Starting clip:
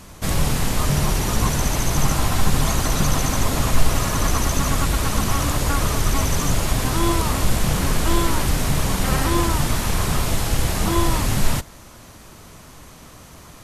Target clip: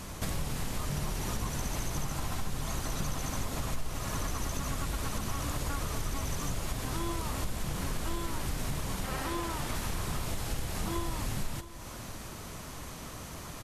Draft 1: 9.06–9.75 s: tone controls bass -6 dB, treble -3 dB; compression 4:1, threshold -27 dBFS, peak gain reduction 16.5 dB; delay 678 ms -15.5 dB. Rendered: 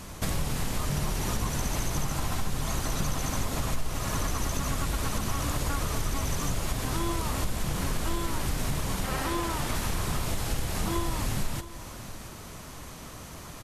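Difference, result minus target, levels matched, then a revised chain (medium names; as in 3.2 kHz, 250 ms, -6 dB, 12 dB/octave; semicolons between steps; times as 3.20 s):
compression: peak gain reduction -4.5 dB
9.06–9.75 s: tone controls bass -6 dB, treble -3 dB; compression 4:1, threshold -33 dBFS, peak gain reduction 21 dB; delay 678 ms -15.5 dB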